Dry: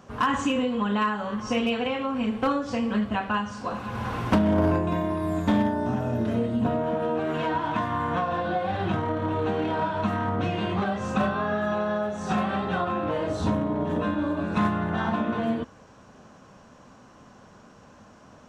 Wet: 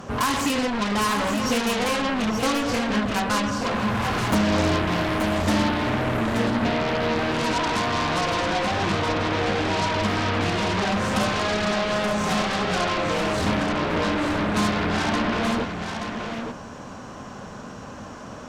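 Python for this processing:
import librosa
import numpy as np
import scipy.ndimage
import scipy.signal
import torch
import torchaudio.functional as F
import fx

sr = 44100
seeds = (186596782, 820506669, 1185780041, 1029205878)

p1 = fx.fold_sine(x, sr, drive_db=17, ceiling_db=-15.0)
p2 = x + (p1 * librosa.db_to_amplitude(-11.0))
y = p2 + 10.0 ** (-6.5 / 20.0) * np.pad(p2, (int(878 * sr / 1000.0), 0))[:len(p2)]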